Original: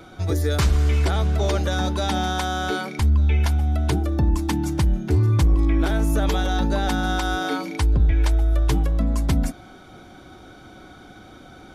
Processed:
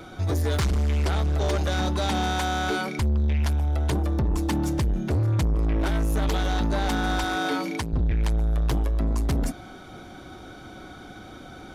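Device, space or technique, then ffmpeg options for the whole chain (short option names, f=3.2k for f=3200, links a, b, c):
saturation between pre-emphasis and de-emphasis: -filter_complex "[0:a]highshelf=f=9.6k:g=7,asoftclip=type=tanh:threshold=-22dB,highshelf=f=9.6k:g=-7,asettb=1/sr,asplit=3[a][b][c];[a]atrim=end=7.244[d];[b]atrim=start=7.24:end=7.93,asetpts=PTS-STARTPTS,afade=t=in:d=0.004:c=qsin,afade=t=out:st=0.686:d=0.004:c=qsin,highpass=110[e];[c]atrim=start=7.926[f];[d][e]acrossfade=d=0.004:c1=hsin:c2=qsin[g];[g][f]acrossfade=d=0.004:c1=qsin:c2=hsin,volume=2dB"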